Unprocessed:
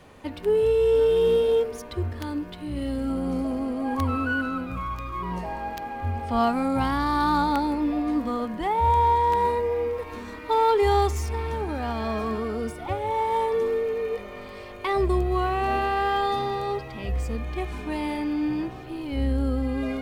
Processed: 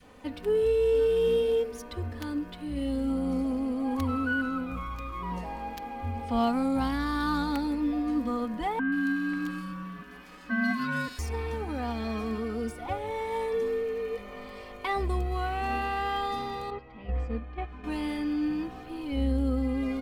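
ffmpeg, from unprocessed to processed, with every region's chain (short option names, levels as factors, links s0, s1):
-filter_complex "[0:a]asettb=1/sr,asplit=3[s0][s1][s2];[s0]atrim=end=8.794[s3];[s1]atrim=start=8.79:end=11.19,asetpts=PTS-STARTPTS,afade=t=in:d=0.004:c=qsin,afade=t=out:st=2.396:d=0.004:c=qsin,highpass=520,aeval=exprs='val(0)*sin(2*PI*660*n/s)':c=same,acrossover=split=2600[s4][s5];[s5]adelay=130[s6];[s4][s6]amix=inputs=2:normalize=0,atrim=end_sample=105840[s7];[s2]atrim=start=11.186[s8];[s3][s7]acrossfade=d=0.004:c1=hsin:c2=qsin[s9];[s9][s8]acrossfade=d=0.004:c1=qsin:c2=hsin,asettb=1/sr,asplit=3[s10][s11][s12];[s10]atrim=end=16.704[s13];[s11]atrim=start=16.7:end=17.84,asetpts=PTS-STARTPTS,afade=t=in:d=0.004:c=qsin,afade=t=out:st=1.136:d=0.004:c=qsin,lowpass=2500,agate=range=0.447:threshold=0.0316:ratio=16:release=100:detection=peak[s14];[s12]atrim=start=17.836[s15];[s13][s14]acrossfade=d=0.004:c1=hsin:c2=qsin[s16];[s16][s15]acrossfade=d=0.004:c1=qsin:c2=hsin,adynamicequalizer=threshold=0.02:dfrequency=700:dqfactor=0.89:tfrequency=700:tqfactor=0.89:attack=5:release=100:ratio=0.375:range=2.5:mode=cutabove:tftype=bell,aecho=1:1:4:0.51,volume=0.631"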